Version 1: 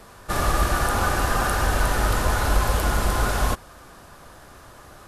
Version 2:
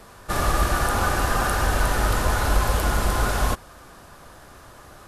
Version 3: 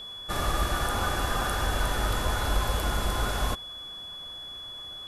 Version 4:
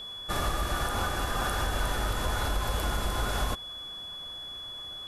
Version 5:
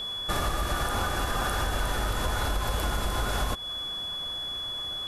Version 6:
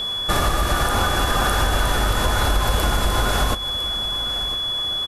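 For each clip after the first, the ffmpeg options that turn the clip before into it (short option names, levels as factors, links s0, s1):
-af anull
-af "aeval=exprs='val(0)+0.0251*sin(2*PI*3400*n/s)':c=same,volume=0.501"
-af "alimiter=limit=0.112:level=0:latency=1:release=144"
-af "acompressor=threshold=0.0224:ratio=2.5,volume=2.11"
-af "aecho=1:1:1005:0.2,volume=2.66"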